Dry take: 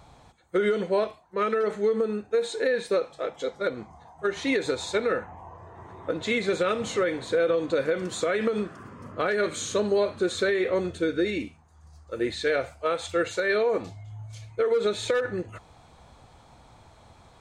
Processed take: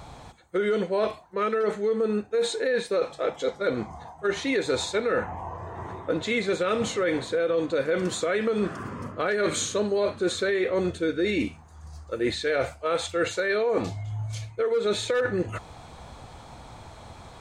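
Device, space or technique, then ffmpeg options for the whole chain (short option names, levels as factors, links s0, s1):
compression on the reversed sound: -af "areverse,acompressor=threshold=0.0282:ratio=6,areverse,volume=2.66"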